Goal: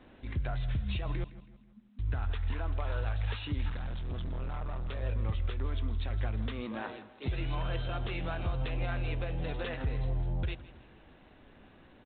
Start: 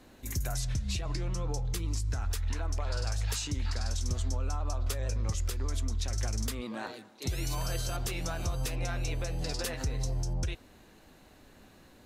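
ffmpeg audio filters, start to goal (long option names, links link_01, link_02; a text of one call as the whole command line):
ffmpeg -i in.wav -filter_complex "[0:a]asettb=1/sr,asplit=3[link_01][link_02][link_03];[link_01]atrim=end=1.244[link_04];[link_02]atrim=start=1.24:end=1.99,asetpts=PTS-STARTPTS,afade=type=in:duration=0.004:curve=qsin,afade=type=out:start_time=0.746:duration=0.004:curve=qsin,asuperpass=centerf=220:order=20:qfactor=3.4[link_05];[link_03]atrim=start=1.986[link_06];[link_04][link_05]acrossfade=duration=0.004:curve1=hsin:curve2=qsin[link_07];[link_07][link_06]acrossfade=duration=0.004:curve1=qsin:curve2=hsin,asplit=3[link_08][link_09][link_10];[link_08]afade=type=out:start_time=3.68:duration=0.02[link_11];[link_09]volume=32.5dB,asoftclip=hard,volume=-32.5dB,afade=type=in:start_time=3.68:duration=0.02,afade=type=out:start_time=5.01:duration=0.02[link_12];[link_10]afade=type=in:start_time=5.01:duration=0.02[link_13];[link_11][link_12][link_13]amix=inputs=3:normalize=0,aecho=1:1:162|324|486|648:0.141|0.0622|0.0273|0.012" -ar 8000 -c:a adpcm_g726 -b:a 32k out.wav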